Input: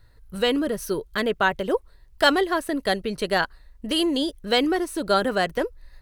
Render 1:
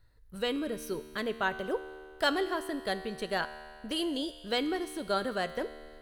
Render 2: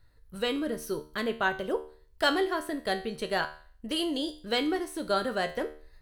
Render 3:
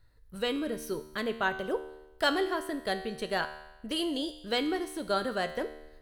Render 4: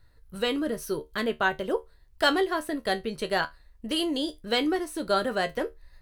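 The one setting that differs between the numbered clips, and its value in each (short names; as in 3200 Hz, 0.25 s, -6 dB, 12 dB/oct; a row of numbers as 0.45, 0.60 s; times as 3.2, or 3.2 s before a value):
resonator, decay: 2.2, 0.45, 1, 0.18 s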